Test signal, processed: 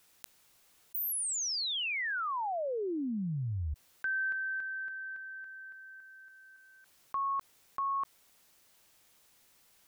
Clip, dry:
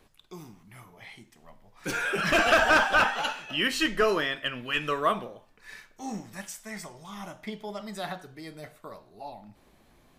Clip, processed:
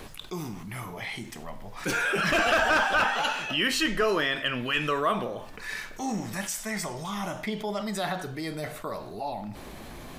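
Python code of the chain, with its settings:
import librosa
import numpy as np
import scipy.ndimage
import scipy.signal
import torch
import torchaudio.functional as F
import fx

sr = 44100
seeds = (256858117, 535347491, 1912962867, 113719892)

y = fx.env_flatten(x, sr, amount_pct=50)
y = y * 10.0 ** (-3.5 / 20.0)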